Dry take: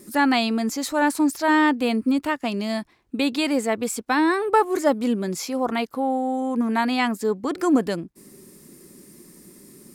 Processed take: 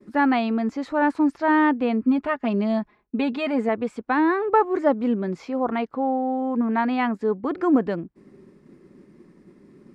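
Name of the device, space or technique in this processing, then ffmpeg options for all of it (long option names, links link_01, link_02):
hearing-loss simulation: -filter_complex "[0:a]asettb=1/sr,asplit=3[link_01][link_02][link_03];[link_01]atrim=end=2.044[link_04];[link_02]atrim=start=2.04:end=3.69,asetpts=PTS-STARTPTS,afade=type=in:duration=0.004:curve=qsin,afade=type=out:start_time=1.646:duration=0.004:curve=qsin,aecho=1:1:4.8:0.64,atrim=end_sample=72765[link_05];[link_03]atrim=start=3.686[link_06];[link_04][link_05]acrossfade=duration=0.004:curve1=hsin:curve2=qsin[link_07];[link_07][link_06]acrossfade=duration=0.004:curve1=qsin:curve2=hsin,lowpass=1900,agate=range=-33dB:threshold=-47dB:ratio=3:detection=peak"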